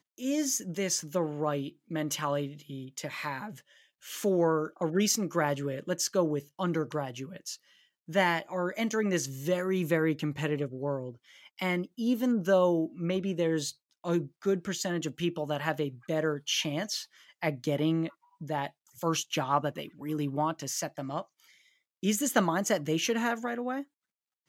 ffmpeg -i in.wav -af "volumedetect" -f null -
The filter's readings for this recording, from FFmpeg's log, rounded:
mean_volume: -31.2 dB
max_volume: -9.8 dB